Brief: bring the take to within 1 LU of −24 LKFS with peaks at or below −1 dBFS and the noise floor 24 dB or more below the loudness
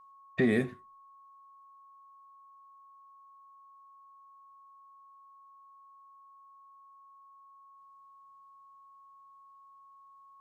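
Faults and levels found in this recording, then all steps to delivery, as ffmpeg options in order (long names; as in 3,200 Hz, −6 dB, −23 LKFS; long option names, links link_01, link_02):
interfering tone 1,100 Hz; level of the tone −54 dBFS; integrated loudness −30.0 LKFS; sample peak −14.5 dBFS; target loudness −24.0 LKFS
→ -af "bandreject=frequency=1100:width=30"
-af "volume=6dB"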